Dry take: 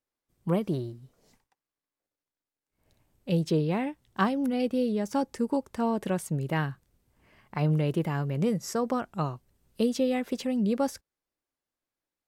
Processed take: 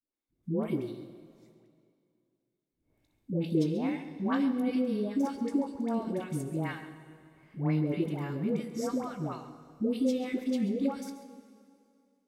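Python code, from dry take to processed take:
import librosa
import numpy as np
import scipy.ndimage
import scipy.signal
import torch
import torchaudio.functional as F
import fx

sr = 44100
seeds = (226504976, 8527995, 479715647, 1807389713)

p1 = fx.doubler(x, sr, ms=19.0, db=-12)
p2 = fx.small_body(p1, sr, hz=(300.0, 2200.0, 3600.0), ring_ms=25, db=10)
p3 = fx.dispersion(p2, sr, late='highs', ms=142.0, hz=720.0)
p4 = p3 + fx.echo_single(p3, sr, ms=136, db=-14.0, dry=0)
p5 = fx.rev_plate(p4, sr, seeds[0], rt60_s=2.4, hf_ratio=0.95, predelay_ms=0, drr_db=10.5)
y = p5 * 10.0 ** (-8.0 / 20.0)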